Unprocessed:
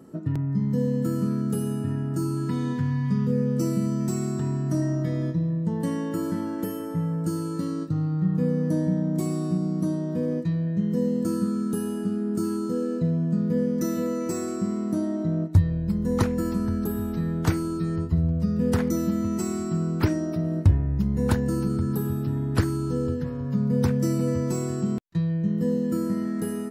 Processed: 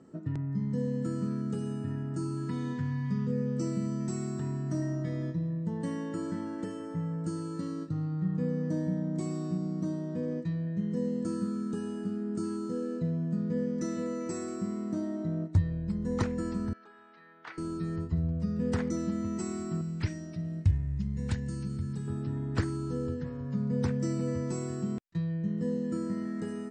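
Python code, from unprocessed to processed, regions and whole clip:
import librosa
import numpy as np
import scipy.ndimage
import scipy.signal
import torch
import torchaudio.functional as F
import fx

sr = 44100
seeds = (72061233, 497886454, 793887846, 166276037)

y = fx.chain(x, sr, fx.highpass(hz=1200.0, slope=12),
    fx.air_absorb(metres=310.0), at=(16.73, 17.58))
y = fx.chain(y, sr, fx.band_shelf(hz=600.0, db=-10.0, octaves=2.9),
    fx.quant_float(bits=6), at=(19.81, 22.08))
y = scipy.signal.sosfilt(scipy.signal.butter(16, 8800.0, 'lowpass', fs=sr, output='sos'), y)
y = fx.peak_eq(y, sr, hz=1900.0, db=3.0, octaves=0.51)
y = F.gain(torch.from_numpy(y), -7.0).numpy()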